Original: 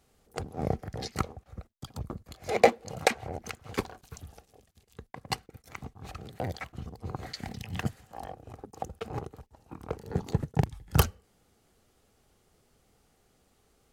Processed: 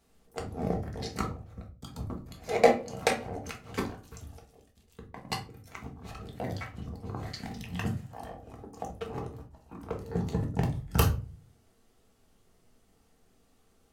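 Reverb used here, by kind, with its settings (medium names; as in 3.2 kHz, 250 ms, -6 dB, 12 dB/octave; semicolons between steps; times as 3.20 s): simulated room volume 220 m³, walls furnished, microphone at 1.6 m; trim -3.5 dB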